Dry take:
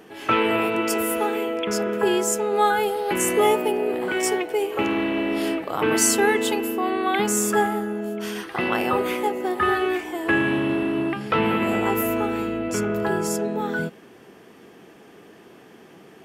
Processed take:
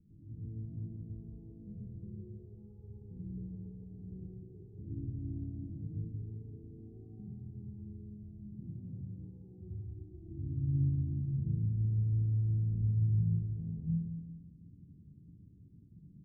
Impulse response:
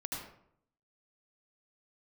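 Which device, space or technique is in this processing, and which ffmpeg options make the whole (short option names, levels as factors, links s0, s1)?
club heard from the street: -filter_complex "[0:a]asettb=1/sr,asplit=3[s0][s1][s2];[s0]atrim=end=8.514[s3];[s1]atrim=start=8.51:end=9.86,asetpts=PTS-STARTPTS,afade=t=in:d=0.004:c=qsin,afade=t=out:st=1.346:d=0.004:c=qsin,highpass=110[s4];[s2]atrim=start=9.856[s5];[s3][s4]acrossfade=d=0.004:c1=hsin:c2=qsin[s6];[s6][s5]acrossfade=d=0.004:c1=qsin:c2=hsin,alimiter=limit=0.126:level=0:latency=1:release=300,lowpass=f=130:w=0.5412,lowpass=f=130:w=1.3066[s7];[1:a]atrim=start_sample=2205[s8];[s7][s8]afir=irnorm=-1:irlink=0,aecho=1:1:174|348|522|696|870:0.501|0.216|0.0927|0.0398|0.0171,volume=2"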